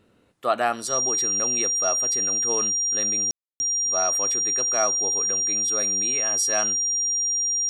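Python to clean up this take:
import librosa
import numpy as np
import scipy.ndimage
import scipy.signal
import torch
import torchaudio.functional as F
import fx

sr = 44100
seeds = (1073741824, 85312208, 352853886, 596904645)

y = fx.notch(x, sr, hz=5700.0, q=30.0)
y = fx.fix_ambience(y, sr, seeds[0], print_start_s=0.0, print_end_s=0.5, start_s=3.31, end_s=3.6)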